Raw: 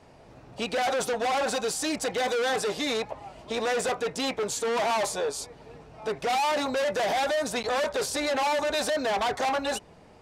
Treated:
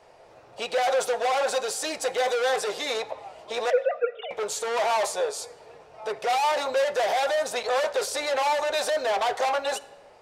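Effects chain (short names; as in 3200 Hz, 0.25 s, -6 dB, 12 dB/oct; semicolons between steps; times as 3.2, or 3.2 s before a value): 3.7–4.31 sine-wave speech; resonant low shelf 350 Hz -11 dB, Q 1.5; reverb RT60 1.1 s, pre-delay 6 ms, DRR 10.5 dB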